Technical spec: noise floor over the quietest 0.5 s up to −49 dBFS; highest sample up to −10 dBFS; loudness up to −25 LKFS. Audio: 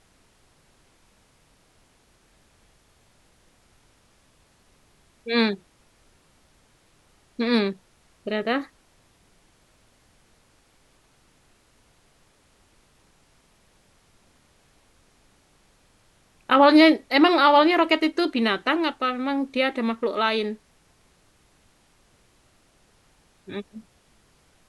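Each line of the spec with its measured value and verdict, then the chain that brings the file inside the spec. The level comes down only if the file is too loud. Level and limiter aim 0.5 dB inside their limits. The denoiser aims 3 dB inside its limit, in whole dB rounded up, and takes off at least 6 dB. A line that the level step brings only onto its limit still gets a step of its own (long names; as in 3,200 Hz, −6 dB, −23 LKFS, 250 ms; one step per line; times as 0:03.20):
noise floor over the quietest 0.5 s −61 dBFS: in spec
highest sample −4.0 dBFS: out of spec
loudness −21.0 LKFS: out of spec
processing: level −4.5 dB
brickwall limiter −10.5 dBFS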